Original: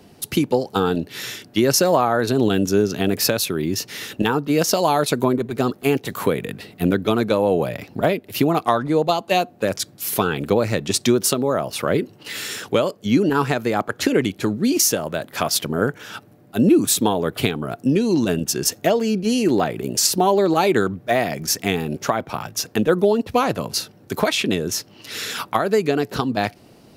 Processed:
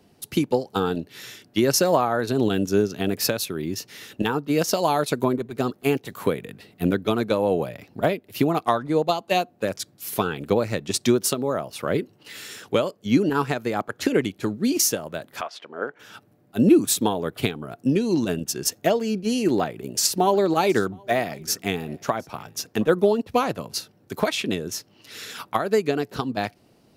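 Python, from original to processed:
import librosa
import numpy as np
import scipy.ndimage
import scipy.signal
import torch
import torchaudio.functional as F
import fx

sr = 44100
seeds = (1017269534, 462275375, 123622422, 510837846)

y = fx.bandpass_edges(x, sr, low_hz=fx.line((15.4, 690.0), (15.98, 380.0)), high_hz=2700.0, at=(15.4, 15.98), fade=0.02)
y = fx.echo_single(y, sr, ms=719, db=-23.0, at=(20.15, 23.1), fade=0.02)
y = fx.upward_expand(y, sr, threshold_db=-29.0, expansion=1.5)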